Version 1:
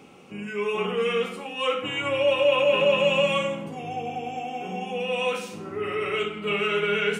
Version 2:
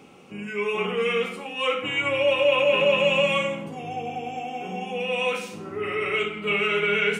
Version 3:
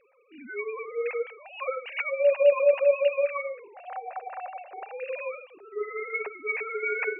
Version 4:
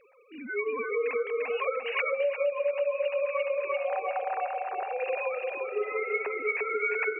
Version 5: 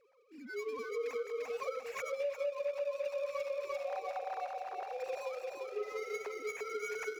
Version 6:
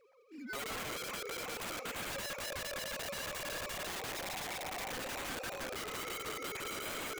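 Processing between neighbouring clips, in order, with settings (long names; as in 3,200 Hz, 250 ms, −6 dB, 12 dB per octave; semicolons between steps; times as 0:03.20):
dynamic equaliser 2,200 Hz, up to +6 dB, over −46 dBFS, Q 3.7
three sine waves on the formant tracks; level −3.5 dB
on a send: repeating echo 345 ms, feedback 52%, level −4 dB; on the sum: downward compressor 10 to 1, threshold −29 dBFS, peak gain reduction 16 dB; level +4 dB
running median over 15 samples; level −8 dB
wrap-around overflow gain 39 dB; level +3 dB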